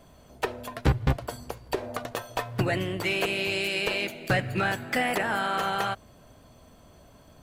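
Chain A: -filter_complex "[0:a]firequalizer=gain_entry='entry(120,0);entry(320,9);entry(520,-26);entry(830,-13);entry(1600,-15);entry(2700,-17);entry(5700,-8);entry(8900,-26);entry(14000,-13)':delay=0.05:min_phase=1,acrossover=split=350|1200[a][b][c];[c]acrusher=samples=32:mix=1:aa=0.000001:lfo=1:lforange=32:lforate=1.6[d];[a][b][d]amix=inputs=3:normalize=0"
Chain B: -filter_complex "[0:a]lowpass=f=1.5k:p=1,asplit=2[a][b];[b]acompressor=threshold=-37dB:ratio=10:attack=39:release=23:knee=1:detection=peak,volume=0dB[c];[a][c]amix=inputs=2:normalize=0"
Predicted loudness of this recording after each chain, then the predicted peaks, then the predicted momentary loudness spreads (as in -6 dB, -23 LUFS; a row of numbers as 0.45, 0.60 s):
-31.5, -26.5 LUFS; -9.0, -9.0 dBFS; 13, 7 LU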